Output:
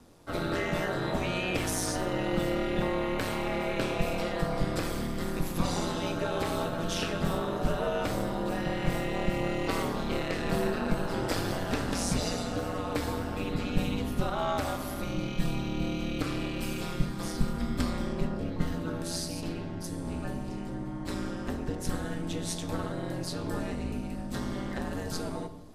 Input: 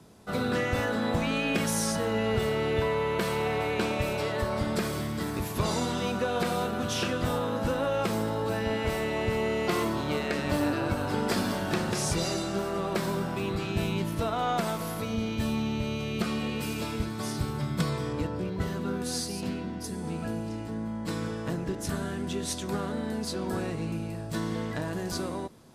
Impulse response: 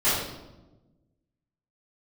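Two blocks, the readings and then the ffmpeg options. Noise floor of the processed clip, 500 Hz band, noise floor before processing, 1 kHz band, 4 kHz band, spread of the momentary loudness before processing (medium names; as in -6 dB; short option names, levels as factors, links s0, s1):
-37 dBFS, -3.0 dB, -36 dBFS, -2.5 dB, -2.0 dB, 6 LU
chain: -filter_complex "[0:a]asubboost=boost=2.5:cutoff=120,aeval=exprs='val(0)*sin(2*PI*90*n/s)':c=same,asplit=2[s0][s1];[1:a]atrim=start_sample=2205[s2];[s1][s2]afir=irnorm=-1:irlink=0,volume=0.0668[s3];[s0][s3]amix=inputs=2:normalize=0"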